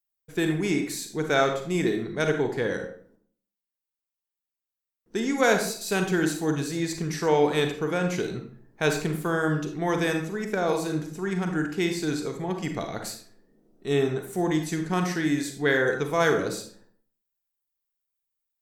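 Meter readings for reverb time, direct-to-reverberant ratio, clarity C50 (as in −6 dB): 0.55 s, 4.5 dB, 7.0 dB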